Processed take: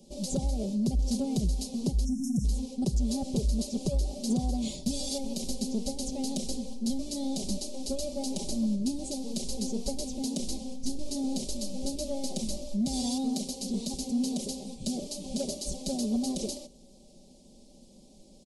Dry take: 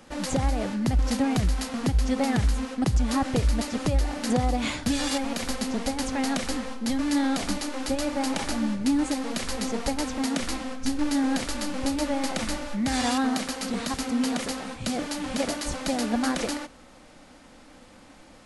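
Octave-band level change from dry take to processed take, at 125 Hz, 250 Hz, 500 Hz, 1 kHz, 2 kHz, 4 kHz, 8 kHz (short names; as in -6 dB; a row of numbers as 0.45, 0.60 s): -4.5 dB, -4.5 dB, -6.0 dB, -15.0 dB, under -25 dB, -5.5 dB, -2.5 dB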